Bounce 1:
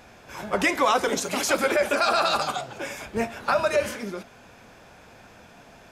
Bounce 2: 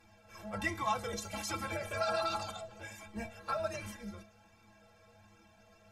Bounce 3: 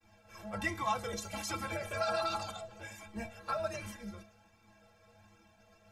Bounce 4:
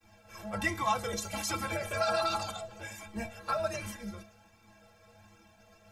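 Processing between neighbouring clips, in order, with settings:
octave divider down 2 oct, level -1 dB; inharmonic resonator 98 Hz, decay 0.3 s, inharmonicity 0.03; flange 1.3 Hz, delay 0.8 ms, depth 1 ms, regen -39%
expander -60 dBFS
treble shelf 7 kHz +4 dB; trim +3.5 dB

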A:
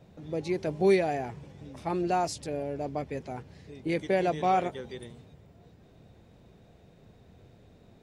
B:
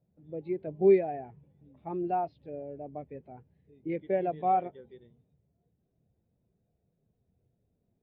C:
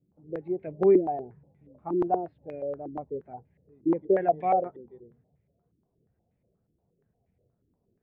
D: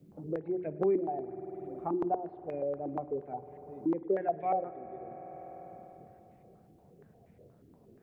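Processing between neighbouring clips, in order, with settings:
steep low-pass 3.8 kHz; hum notches 50/100 Hz; spectral contrast expander 1.5:1
step-sequenced low-pass 8.4 Hz 320–2200 Hz
hum notches 60/120/180/240/300/360 Hz; spring tank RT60 2.7 s, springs 49 ms, chirp 35 ms, DRR 16 dB; three bands compressed up and down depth 70%; trim -4.5 dB

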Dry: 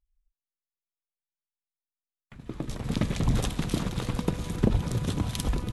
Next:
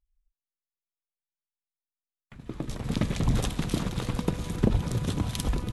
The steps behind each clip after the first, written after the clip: no audible change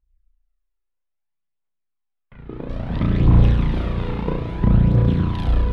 flutter echo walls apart 5.9 m, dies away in 1.2 s; phaser 0.6 Hz, delay 2.4 ms, feedback 43%; distance through air 400 m; trim +2.5 dB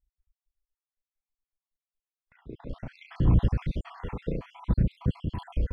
random holes in the spectrogram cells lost 62%; trim -7 dB

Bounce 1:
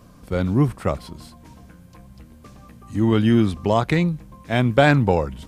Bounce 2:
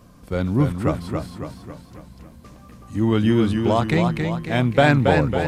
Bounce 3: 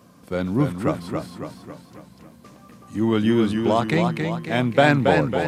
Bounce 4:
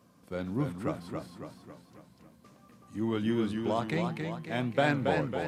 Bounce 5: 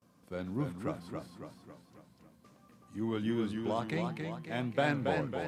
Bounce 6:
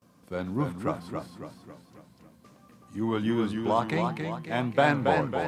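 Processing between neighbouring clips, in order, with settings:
modulated delay 275 ms, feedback 51%, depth 80 cents, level -5 dB; trim -1 dB
high-pass 150 Hz 12 dB/octave
flange 1.9 Hz, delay 6.7 ms, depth 4.3 ms, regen -86%; trim -6 dB
gate with hold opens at -55 dBFS; trim -3.5 dB
dynamic bell 970 Hz, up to +7 dB, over -49 dBFS, Q 1.5; trim +5.5 dB

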